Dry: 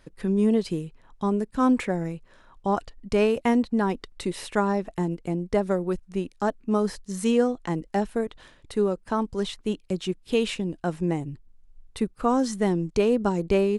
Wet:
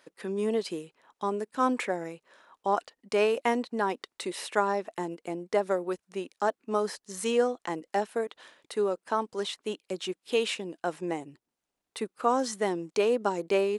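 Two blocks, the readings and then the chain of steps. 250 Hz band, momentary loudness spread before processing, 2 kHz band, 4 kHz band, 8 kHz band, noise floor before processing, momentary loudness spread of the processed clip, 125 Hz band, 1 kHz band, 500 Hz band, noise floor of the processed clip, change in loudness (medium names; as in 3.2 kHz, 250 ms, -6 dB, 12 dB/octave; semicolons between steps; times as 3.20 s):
-10.0 dB, 9 LU, 0.0 dB, 0.0 dB, 0.0 dB, -56 dBFS, 10 LU, -14.5 dB, 0.0 dB, -2.5 dB, under -85 dBFS, -4.0 dB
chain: high-pass 420 Hz 12 dB/octave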